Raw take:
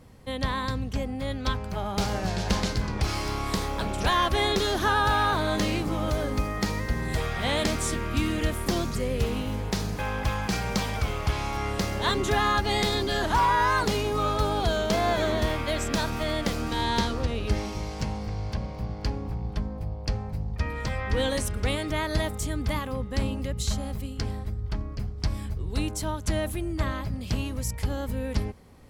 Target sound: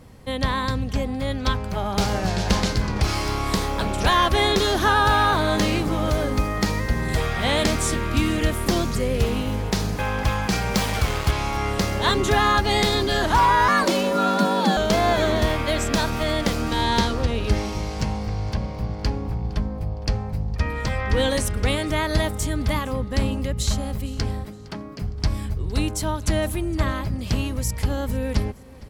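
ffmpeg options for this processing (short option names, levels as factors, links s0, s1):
-filter_complex "[0:a]asettb=1/sr,asplit=3[s0][s1][s2];[s0]atrim=end=10.744[s3];[s1]atrim=start=10.74:end=11.31,asetpts=PTS-STARTPTS,afade=t=in:d=0.004:c=qsin,afade=t=out:st=0.566:d=0.004:c=qsin,acrusher=bits=4:mix=0:aa=0.5[s4];[s2]atrim=start=11.306[s5];[s3][s4]acrossfade=d=0.004:c1=hsin:c2=qsin[s6];[s6][s5]acrossfade=d=0.004:c1=qsin:c2=hsin,asettb=1/sr,asplit=3[s7][s8][s9];[s7]atrim=end=13.684[s10];[s8]atrim=start=13.68:end=14.77,asetpts=PTS-STARTPTS,afade=t=in:d=0.004:c=qsin,afade=t=out:st=1.086:d=0.004:c=qsin,afreqshift=140[s11];[s9]atrim=start=14.766[s12];[s10][s11]acrossfade=d=0.004:c1=hsin:c2=qsin[s13];[s13][s12]acrossfade=d=0.004:c1=qsin:c2=hsin,asettb=1/sr,asplit=3[s14][s15][s16];[s14]atrim=end=24.454[s17];[s15]atrim=start=24.45:end=25.02,asetpts=PTS-STARTPTS,afade=t=in:d=0.004:c=qsin,afade=t=out:st=0.566:d=0.004:c=qsin,highpass=f=160:w=0.5412,highpass=f=160:w=1.3066[s18];[s16]atrim=start=25.016[s19];[s17][s18]acrossfade=d=0.004:c1=hsin:c2=qsin[s20];[s20][s19]acrossfade=d=0.004:c1=qsin:c2=hsin,aecho=1:1:461|922:0.0794|0.0278,volume=1.78"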